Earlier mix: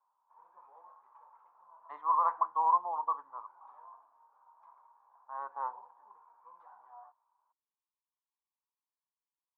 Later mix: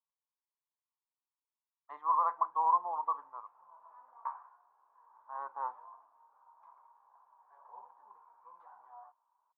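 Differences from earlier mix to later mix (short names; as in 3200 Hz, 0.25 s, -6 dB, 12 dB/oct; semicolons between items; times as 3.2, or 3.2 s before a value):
background: entry +2.00 s; reverb: off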